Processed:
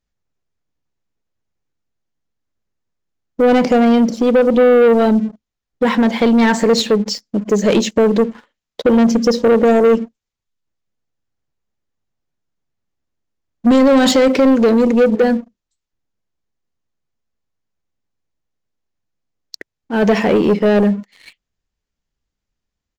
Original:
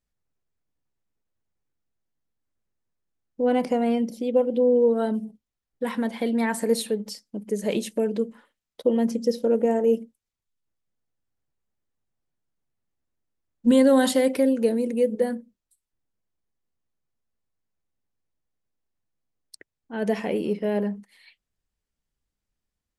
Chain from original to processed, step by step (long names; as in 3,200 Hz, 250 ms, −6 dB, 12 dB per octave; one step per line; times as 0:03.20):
brickwall limiter −14 dBFS, peak gain reduction 5.5 dB
downsampling to 16,000 Hz
leveller curve on the samples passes 2
level +8 dB